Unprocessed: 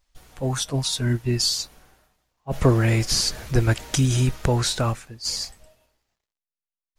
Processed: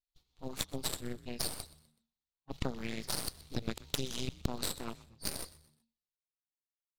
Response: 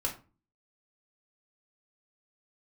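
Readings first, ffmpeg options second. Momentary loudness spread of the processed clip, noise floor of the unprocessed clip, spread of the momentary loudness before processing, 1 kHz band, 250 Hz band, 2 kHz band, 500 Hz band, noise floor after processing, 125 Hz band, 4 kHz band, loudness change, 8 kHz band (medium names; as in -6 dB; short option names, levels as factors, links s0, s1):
9 LU, under -85 dBFS, 9 LU, -14.5 dB, -15.5 dB, -15.0 dB, -16.5 dB, under -85 dBFS, -23.0 dB, -14.5 dB, -16.5 dB, -13.5 dB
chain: -filter_complex "[0:a]agate=range=0.355:threshold=0.00631:ratio=16:detection=peak,equalizer=f=630:t=o:w=0.67:g=-10,equalizer=f=1600:t=o:w=0.67:g=-10,equalizer=f=4000:t=o:w=0.67:g=12,equalizer=f=10000:t=o:w=0.67:g=-9,acompressor=threshold=0.1:ratio=12,aeval=exprs='0.501*(cos(1*acos(clip(val(0)/0.501,-1,1)))-cos(1*PI/2))+0.158*(cos(4*acos(clip(val(0)/0.501,-1,1)))-cos(4*PI/2))+0.0891*(cos(7*acos(clip(val(0)/0.501,-1,1)))-cos(7*PI/2))':c=same,asplit=2[s0][s1];[s1]asplit=3[s2][s3][s4];[s2]adelay=125,afreqshift=-77,volume=0.112[s5];[s3]adelay=250,afreqshift=-154,volume=0.0427[s6];[s4]adelay=375,afreqshift=-231,volume=0.0162[s7];[s5][s6][s7]amix=inputs=3:normalize=0[s8];[s0][s8]amix=inputs=2:normalize=0,volume=0.355"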